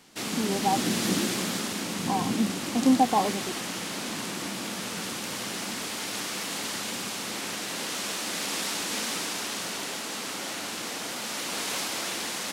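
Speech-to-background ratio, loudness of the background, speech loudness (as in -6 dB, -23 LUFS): 2.0 dB, -30.5 LUFS, -28.5 LUFS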